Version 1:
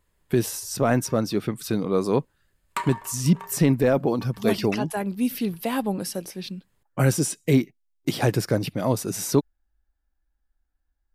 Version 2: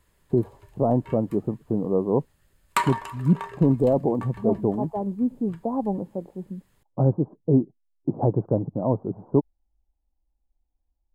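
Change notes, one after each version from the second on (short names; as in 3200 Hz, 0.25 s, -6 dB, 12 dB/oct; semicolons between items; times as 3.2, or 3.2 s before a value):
speech: add steep low-pass 980 Hz 48 dB/oct; background +6.0 dB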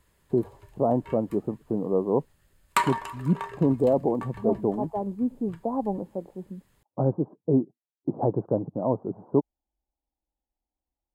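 speech: add HPF 230 Hz 6 dB/oct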